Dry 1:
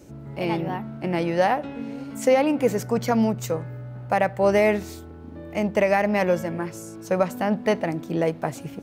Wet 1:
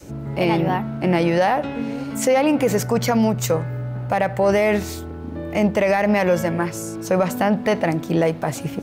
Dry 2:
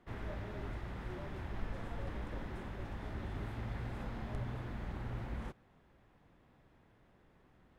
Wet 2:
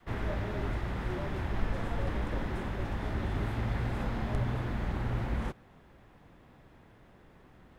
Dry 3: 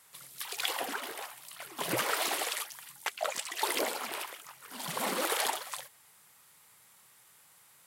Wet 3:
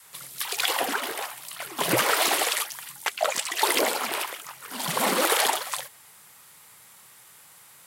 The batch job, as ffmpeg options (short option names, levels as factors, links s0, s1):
-af "adynamicequalizer=threshold=0.0178:dfrequency=290:dqfactor=0.83:tfrequency=290:tqfactor=0.83:attack=5:release=100:ratio=0.375:range=2:mode=cutabove:tftype=bell,acontrast=50,alimiter=level_in=3.76:limit=0.891:release=50:level=0:latency=1,volume=0.376"